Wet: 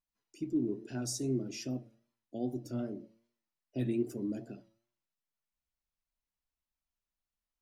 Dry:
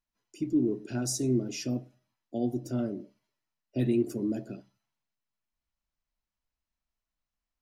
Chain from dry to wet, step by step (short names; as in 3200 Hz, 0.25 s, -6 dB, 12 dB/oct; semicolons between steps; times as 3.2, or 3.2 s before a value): de-hum 114.7 Hz, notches 8; vibrato 2.5 Hz 57 cents; gain -5.5 dB